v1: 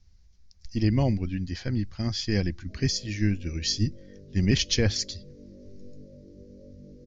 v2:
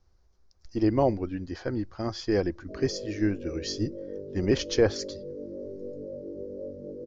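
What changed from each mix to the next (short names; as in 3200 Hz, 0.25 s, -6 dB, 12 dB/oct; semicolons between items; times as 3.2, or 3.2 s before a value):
speech -7.5 dB; master: add band shelf 670 Hz +15 dB 2.6 oct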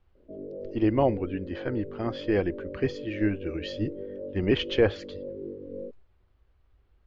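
background: entry -2.40 s; master: add resonant high shelf 4100 Hz -11.5 dB, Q 3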